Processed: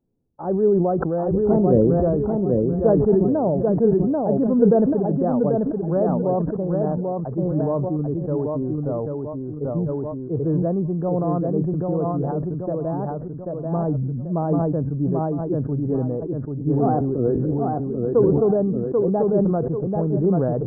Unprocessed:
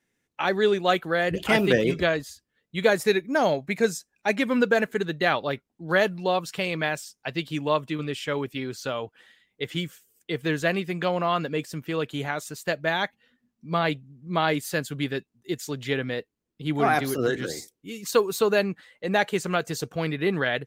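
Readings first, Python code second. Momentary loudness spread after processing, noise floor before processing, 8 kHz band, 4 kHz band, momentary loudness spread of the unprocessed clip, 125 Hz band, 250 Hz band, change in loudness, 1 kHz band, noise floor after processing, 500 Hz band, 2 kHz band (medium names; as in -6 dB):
9 LU, -81 dBFS, under -40 dB, under -40 dB, 11 LU, +11.0 dB, +9.0 dB, +4.5 dB, -1.0 dB, -31 dBFS, +5.0 dB, under -20 dB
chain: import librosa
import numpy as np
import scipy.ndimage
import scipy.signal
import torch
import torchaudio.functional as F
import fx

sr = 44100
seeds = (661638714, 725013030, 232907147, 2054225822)

y = scipy.ndimage.gaussian_filter1d(x, 12.0, mode='constant')
y = fx.low_shelf(y, sr, hz=81.0, db=11.0)
y = fx.echo_feedback(y, sr, ms=788, feedback_pct=26, wet_db=-3.5)
y = fx.sustainer(y, sr, db_per_s=22.0)
y = F.gain(torch.from_numpy(y), 4.5).numpy()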